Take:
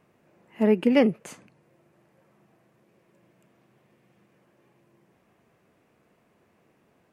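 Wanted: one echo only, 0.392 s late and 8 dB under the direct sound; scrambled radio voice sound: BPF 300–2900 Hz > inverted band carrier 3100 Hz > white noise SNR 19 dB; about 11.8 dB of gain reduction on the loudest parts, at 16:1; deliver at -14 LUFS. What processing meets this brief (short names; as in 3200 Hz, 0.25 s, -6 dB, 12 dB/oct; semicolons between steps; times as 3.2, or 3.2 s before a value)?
compressor 16:1, threshold -26 dBFS; BPF 300–2900 Hz; echo 0.392 s -8 dB; inverted band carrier 3100 Hz; white noise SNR 19 dB; gain +19 dB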